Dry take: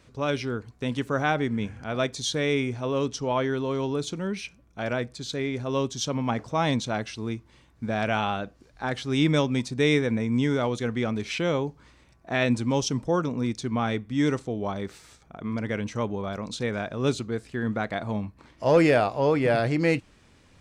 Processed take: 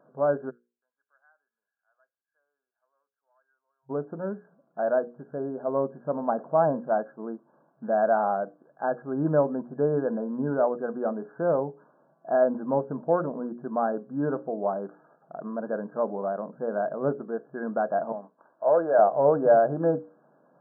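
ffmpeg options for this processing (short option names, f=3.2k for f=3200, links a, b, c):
-filter_complex "[0:a]asplit=3[a][b][c];[a]afade=t=out:st=0.49:d=0.02[d];[b]asuperpass=centerf=2600:order=4:qfactor=5,afade=t=in:st=0.49:d=0.02,afade=t=out:st=3.89:d=0.02[e];[c]afade=t=in:st=3.89:d=0.02[f];[d][e][f]amix=inputs=3:normalize=0,asettb=1/sr,asplit=3[g][h][i];[g]atrim=end=18.124[j];[h]atrim=start=18.12:end=18.99,asetpts=PTS-STARTPTS,afade=t=in:d=0.004:c=qsin,afade=t=out:st=0.866:d=0.004:c=qsin,highpass=f=880:p=1[k];[i]atrim=start=18.986[l];[j][k]acrossfade=d=0.004:c1=hsin:c2=qsin[m];[m][l]acrossfade=d=0.004:c1=qsin:c2=hsin,bandreject=f=60:t=h:w=6,bandreject=f=120:t=h:w=6,bandreject=f=180:t=h:w=6,bandreject=f=240:t=h:w=6,bandreject=f=300:t=h:w=6,bandreject=f=360:t=h:w=6,bandreject=f=420:t=h:w=6,bandreject=f=480:t=h:w=6,bandreject=f=540:t=h:w=6,afftfilt=real='re*between(b*sr/4096,130,1700)':imag='im*between(b*sr/4096,130,1700)':win_size=4096:overlap=0.75,equalizer=f=640:w=1.8:g=13.5,volume=-5dB"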